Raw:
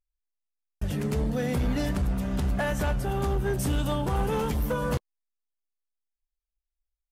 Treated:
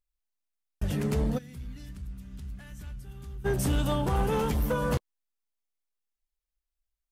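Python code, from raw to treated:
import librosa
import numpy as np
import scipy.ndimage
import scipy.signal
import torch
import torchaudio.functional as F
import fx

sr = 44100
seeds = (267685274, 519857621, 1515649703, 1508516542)

y = fx.tone_stack(x, sr, knobs='6-0-2', at=(1.37, 3.44), fade=0.02)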